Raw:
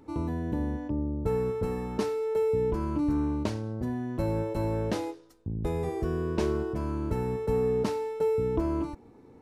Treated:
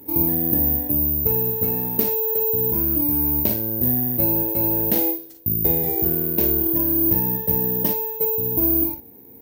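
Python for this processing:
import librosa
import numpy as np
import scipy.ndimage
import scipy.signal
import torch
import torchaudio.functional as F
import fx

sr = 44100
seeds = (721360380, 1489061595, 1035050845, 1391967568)

p1 = fx.ripple_eq(x, sr, per_octave=1.2, db=11, at=(6.6, 7.88))
p2 = fx.rider(p1, sr, range_db=5, speed_s=0.5)
p3 = p2 + fx.room_early_taps(p2, sr, ms=(42, 57), db=(-7.5, -11.0), dry=0)
p4 = (np.kron(p3[::3], np.eye(3)[0]) * 3)[:len(p3)]
p5 = scipy.signal.sosfilt(scipy.signal.butter(2, 82.0, 'highpass', fs=sr, output='sos'), p4)
p6 = fx.peak_eq(p5, sr, hz=1200.0, db=-14.0, octaves=0.51)
p7 = fx.env_flatten(p6, sr, amount_pct=50, at=(2.07, 3.4))
y = p7 * 10.0 ** (3.5 / 20.0)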